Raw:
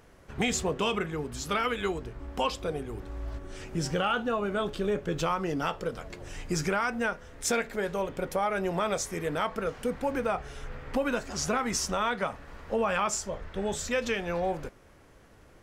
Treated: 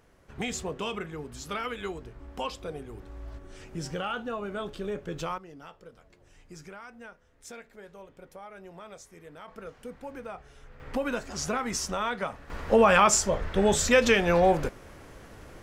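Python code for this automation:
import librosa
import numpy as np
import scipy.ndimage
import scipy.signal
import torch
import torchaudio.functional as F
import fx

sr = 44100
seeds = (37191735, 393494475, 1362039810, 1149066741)

y = fx.gain(x, sr, db=fx.steps((0.0, -5.0), (5.38, -17.0), (9.48, -11.0), (10.8, -1.5), (12.5, 8.5)))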